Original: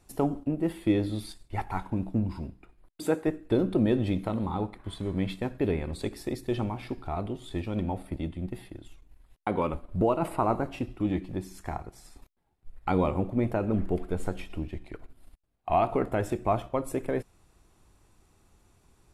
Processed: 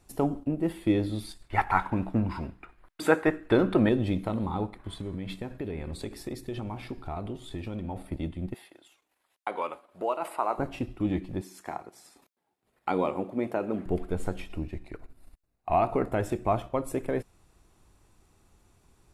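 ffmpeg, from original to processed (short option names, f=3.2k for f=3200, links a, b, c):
-filter_complex "[0:a]asettb=1/sr,asplit=3[a][b][c];[a]atrim=end=1.424[d];[b]atrim=start=1.42:end=3.89,asetpts=PTS-STARTPTS,afade=t=in:d=0.004:c=qsin,afade=t=out:st=2.466:d=0.004:c=qsin,equalizer=f=1.5k:t=o:w=2.2:g=13[e];[c]atrim=start=3.886[f];[d][e]acrossfade=d=0.004:c1=hsin:c2=qsin[g];[g][f]acrossfade=d=0.004:c1=qsin:c2=hsin,asettb=1/sr,asplit=3[h][i][j];[h]atrim=end=4.704[k];[i]atrim=start=4.7:end=7.96,asetpts=PTS-STARTPTS,afade=t=in:d=0.004:c=qsin,afade=t=out:st=3.256:d=0.004:c=qsin,acompressor=threshold=-30dB:ratio=6:attack=3.2:release=140:knee=1:detection=peak[l];[j]atrim=start=7.956[m];[k][l]acrossfade=d=0.004:c1=hsin:c2=qsin[n];[n][m]acrossfade=d=0.004:c1=qsin:c2=hsin,asettb=1/sr,asplit=3[o][p][q];[o]atrim=end=8.544[r];[p]atrim=start=8.54:end=10.58,asetpts=PTS-STARTPTS,afade=t=in:d=0.004:c=qsin,afade=t=out:st=2.036:d=0.004:c=qsin,highpass=620[s];[q]atrim=start=10.576[t];[r][s]acrossfade=d=0.004:c1=hsin:c2=qsin[u];[u][t]acrossfade=d=0.004:c1=qsin:c2=hsin,asettb=1/sr,asplit=3[v][w][x];[v]atrim=end=11.414[y];[w]atrim=start=11.41:end=13.86,asetpts=PTS-STARTPTS,afade=t=in:d=0.004:c=qsin,afade=t=out:st=2.446:d=0.004:c=qsin,highpass=260[z];[x]atrim=start=13.856[aa];[y][z]acrossfade=d=0.004:c1=hsin:c2=qsin[ab];[ab][aa]acrossfade=d=0.004:c1=qsin:c2=hsin,asettb=1/sr,asplit=3[ac][ad][ae];[ac]atrim=end=14.544[af];[ad]atrim=start=14.54:end=16.12,asetpts=PTS-STARTPTS,afade=t=in:d=0.004:c=qsin,afade=t=out:st=1.576:d=0.004:c=qsin,bandreject=f=3.2k:w=6[ag];[ae]atrim=start=16.116[ah];[af][ag]acrossfade=d=0.004:c1=hsin:c2=qsin[ai];[ai][ah]acrossfade=d=0.004:c1=qsin:c2=hsin"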